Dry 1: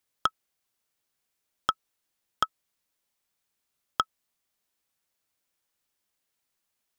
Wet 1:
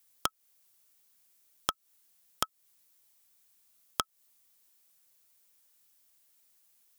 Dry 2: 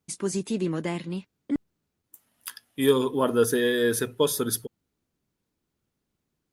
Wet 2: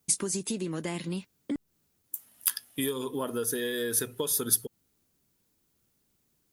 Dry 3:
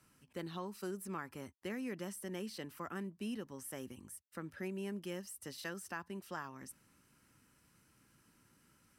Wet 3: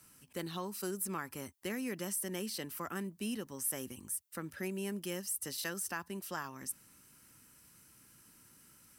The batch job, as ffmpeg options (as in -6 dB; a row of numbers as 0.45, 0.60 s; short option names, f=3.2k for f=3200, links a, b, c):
-af "acompressor=threshold=-32dB:ratio=8,crystalizer=i=2:c=0,volume=2.5dB"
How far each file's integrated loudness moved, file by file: -4.0, -4.5, +5.5 LU